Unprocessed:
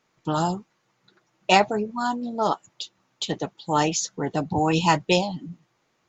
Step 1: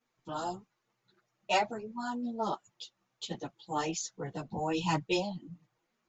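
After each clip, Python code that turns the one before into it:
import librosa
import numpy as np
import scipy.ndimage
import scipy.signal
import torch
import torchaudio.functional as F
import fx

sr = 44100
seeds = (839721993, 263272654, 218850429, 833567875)

y = fx.chorus_voices(x, sr, voices=6, hz=0.37, base_ms=13, depth_ms=4.7, mix_pct=70)
y = F.gain(torch.from_numpy(y), -8.5).numpy()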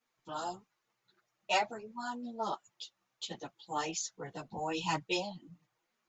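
y = fx.low_shelf(x, sr, hz=460.0, db=-8.5)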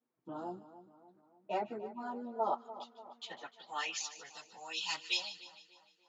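y = fx.filter_sweep_bandpass(x, sr, from_hz=280.0, to_hz=4200.0, start_s=1.63, end_s=4.39, q=1.4)
y = fx.echo_split(y, sr, split_hz=1400.0, low_ms=293, high_ms=150, feedback_pct=52, wet_db=-14)
y = F.gain(torch.from_numpy(y), 5.5).numpy()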